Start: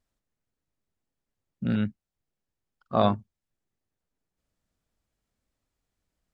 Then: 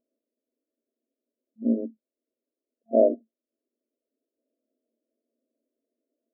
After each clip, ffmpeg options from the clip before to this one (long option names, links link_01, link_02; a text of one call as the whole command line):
ffmpeg -i in.wav -af "afftfilt=real='re*between(b*sr/4096,220,680)':imag='im*between(b*sr/4096,220,680)':win_size=4096:overlap=0.75,volume=7dB" out.wav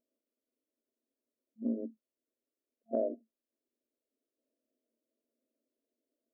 ffmpeg -i in.wav -af "acompressor=threshold=-26dB:ratio=3,volume=-5dB" out.wav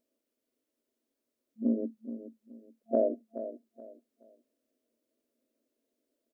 ffmpeg -i in.wav -af "aecho=1:1:425|850|1275:0.251|0.0703|0.0197,volume=5.5dB" out.wav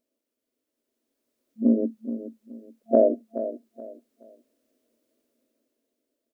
ffmpeg -i in.wav -af "dynaudnorm=framelen=260:gausssize=9:maxgain=9dB" out.wav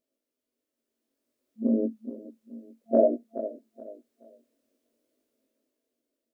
ffmpeg -i in.wav -af "flanger=delay=18.5:depth=3.3:speed=0.55" out.wav